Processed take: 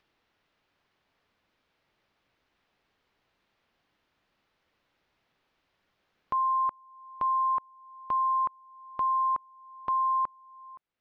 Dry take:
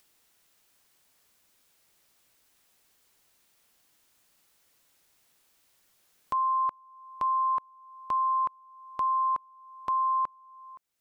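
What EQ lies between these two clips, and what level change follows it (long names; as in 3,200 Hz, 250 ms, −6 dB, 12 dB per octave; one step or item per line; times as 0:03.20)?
high-frequency loss of the air 300 metres
+1.5 dB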